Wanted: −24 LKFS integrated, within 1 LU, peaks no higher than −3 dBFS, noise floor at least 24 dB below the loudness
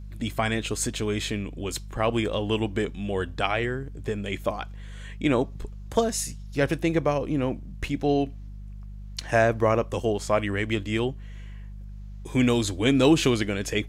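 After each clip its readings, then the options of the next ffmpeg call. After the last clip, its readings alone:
mains hum 50 Hz; hum harmonics up to 200 Hz; level of the hum −36 dBFS; integrated loudness −26.0 LKFS; sample peak −8.0 dBFS; target loudness −24.0 LKFS
→ -af "bandreject=frequency=50:width_type=h:width=4,bandreject=frequency=100:width_type=h:width=4,bandreject=frequency=150:width_type=h:width=4,bandreject=frequency=200:width_type=h:width=4"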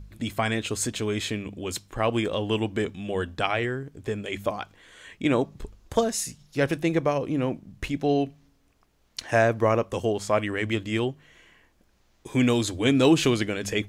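mains hum none found; integrated loudness −26.0 LKFS; sample peak −8.0 dBFS; target loudness −24.0 LKFS
→ -af "volume=2dB"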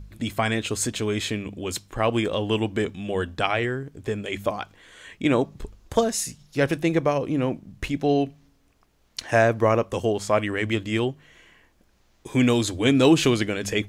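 integrated loudness −24.0 LKFS; sample peak −6.0 dBFS; background noise floor −62 dBFS

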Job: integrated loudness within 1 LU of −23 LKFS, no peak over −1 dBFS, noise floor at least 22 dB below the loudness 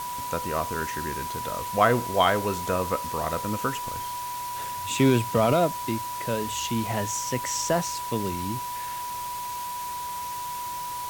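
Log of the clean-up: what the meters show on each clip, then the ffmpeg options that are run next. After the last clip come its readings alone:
interfering tone 980 Hz; level of the tone −31 dBFS; background noise floor −33 dBFS; target noise floor −49 dBFS; integrated loudness −27.0 LKFS; sample peak −6.5 dBFS; target loudness −23.0 LKFS
→ -af "bandreject=frequency=980:width=30"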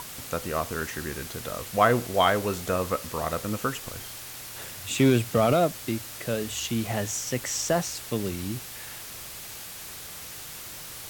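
interfering tone none found; background noise floor −41 dBFS; target noise floor −50 dBFS
→ -af "afftdn=noise_reduction=9:noise_floor=-41"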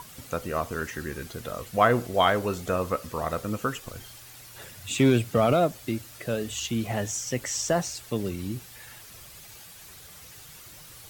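background noise floor −47 dBFS; target noise floor −50 dBFS
→ -af "afftdn=noise_reduction=6:noise_floor=-47"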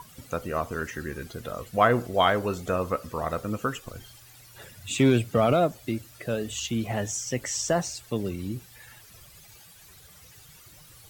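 background noise floor −52 dBFS; integrated loudness −27.5 LKFS; sample peak −6.5 dBFS; target loudness −23.0 LKFS
→ -af "volume=4.5dB"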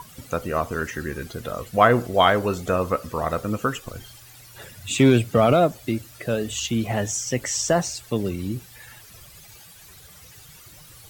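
integrated loudness −23.0 LKFS; sample peak −2.0 dBFS; background noise floor −47 dBFS

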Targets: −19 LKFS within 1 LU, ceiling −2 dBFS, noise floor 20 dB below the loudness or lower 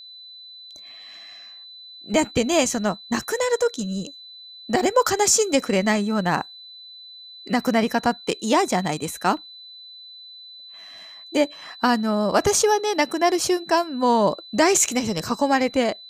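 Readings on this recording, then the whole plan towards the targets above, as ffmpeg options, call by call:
interfering tone 4,000 Hz; level of the tone −40 dBFS; integrated loudness −21.5 LKFS; sample peak −5.0 dBFS; target loudness −19.0 LKFS
→ -af "bandreject=frequency=4000:width=30"
-af "volume=2.5dB"

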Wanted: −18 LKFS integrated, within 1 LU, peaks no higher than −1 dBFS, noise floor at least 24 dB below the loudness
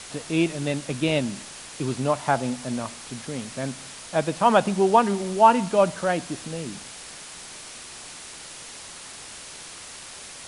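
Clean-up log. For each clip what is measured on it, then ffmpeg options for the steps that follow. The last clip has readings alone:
background noise floor −41 dBFS; target noise floor −48 dBFS; integrated loudness −24.0 LKFS; sample peak −3.5 dBFS; target loudness −18.0 LKFS
→ -af "afftdn=noise_reduction=7:noise_floor=-41"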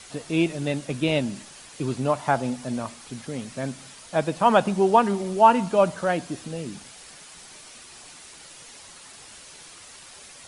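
background noise floor −46 dBFS; target noise floor −48 dBFS
→ -af "afftdn=noise_reduction=6:noise_floor=-46"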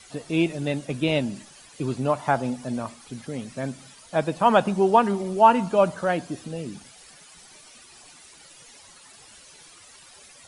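background noise floor −50 dBFS; integrated loudness −24.0 LKFS; sample peak −3.5 dBFS; target loudness −18.0 LKFS
→ -af "volume=6dB,alimiter=limit=-1dB:level=0:latency=1"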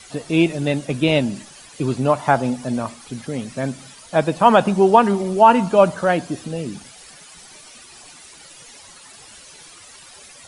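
integrated loudness −18.5 LKFS; sample peak −1.0 dBFS; background noise floor −44 dBFS

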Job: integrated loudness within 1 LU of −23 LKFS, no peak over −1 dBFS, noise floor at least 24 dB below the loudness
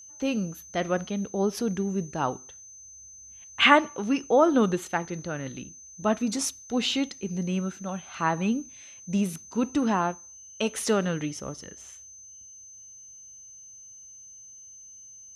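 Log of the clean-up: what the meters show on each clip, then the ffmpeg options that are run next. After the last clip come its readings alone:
interfering tone 6,200 Hz; level of the tone −45 dBFS; integrated loudness −27.0 LKFS; sample peak −3.5 dBFS; target loudness −23.0 LKFS
→ -af "bandreject=frequency=6200:width=30"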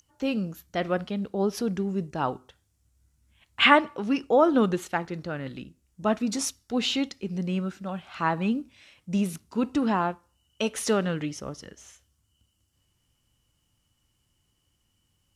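interfering tone none found; integrated loudness −27.0 LKFS; sample peak −3.0 dBFS; target loudness −23.0 LKFS
→ -af "volume=4dB,alimiter=limit=-1dB:level=0:latency=1"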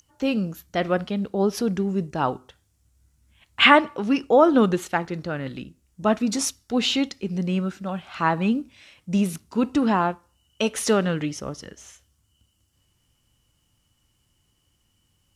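integrated loudness −23.0 LKFS; sample peak −1.0 dBFS; background noise floor −69 dBFS

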